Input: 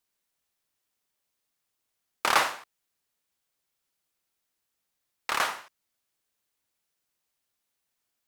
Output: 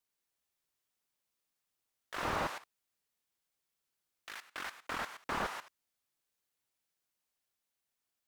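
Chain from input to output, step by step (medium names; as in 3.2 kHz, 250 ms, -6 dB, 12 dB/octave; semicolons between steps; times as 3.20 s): level held to a coarse grid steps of 15 dB; ever faster or slower copies 179 ms, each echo +2 st, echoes 3, each echo -6 dB; slew-rate limiter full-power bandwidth 22 Hz; trim +2.5 dB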